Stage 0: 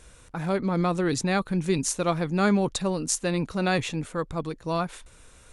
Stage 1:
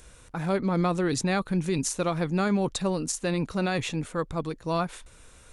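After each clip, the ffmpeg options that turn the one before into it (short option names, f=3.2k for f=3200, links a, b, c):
-filter_complex "[0:a]acrossover=split=4900[a][b];[b]acompressor=mode=upward:threshold=-59dB:ratio=2.5[c];[a][c]amix=inputs=2:normalize=0,alimiter=limit=-17dB:level=0:latency=1:release=66"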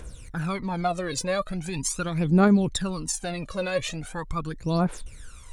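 -af "acompressor=threshold=-31dB:ratio=1.5,aphaser=in_gain=1:out_gain=1:delay=2:decay=0.77:speed=0.41:type=triangular"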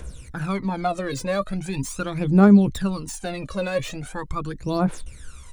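-filter_complex "[0:a]acrossover=split=410|1600[a][b][c];[a]asplit=2[d][e];[e]adelay=15,volume=-2.5dB[f];[d][f]amix=inputs=2:normalize=0[g];[c]asoftclip=type=tanh:threshold=-33.5dB[h];[g][b][h]amix=inputs=3:normalize=0,volume=2dB"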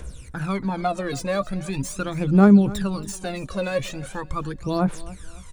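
-af "aecho=1:1:277|554|831:0.112|0.0438|0.0171"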